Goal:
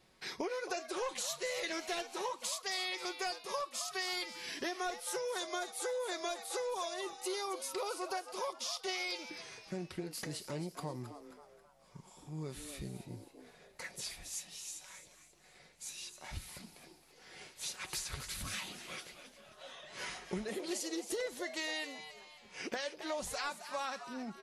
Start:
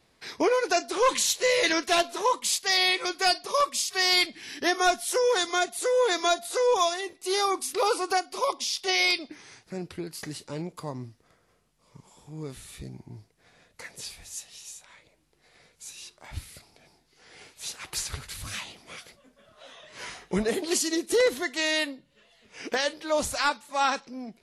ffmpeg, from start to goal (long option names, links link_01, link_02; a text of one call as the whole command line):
ffmpeg -i in.wav -filter_complex "[0:a]aecho=1:1:5.4:0.35,acompressor=threshold=-34dB:ratio=5,asplit=5[link_01][link_02][link_03][link_04][link_05];[link_02]adelay=268,afreqshift=140,volume=-11dB[link_06];[link_03]adelay=536,afreqshift=280,volume=-18.5dB[link_07];[link_04]adelay=804,afreqshift=420,volume=-26.1dB[link_08];[link_05]adelay=1072,afreqshift=560,volume=-33.6dB[link_09];[link_01][link_06][link_07][link_08][link_09]amix=inputs=5:normalize=0,volume=-3dB" out.wav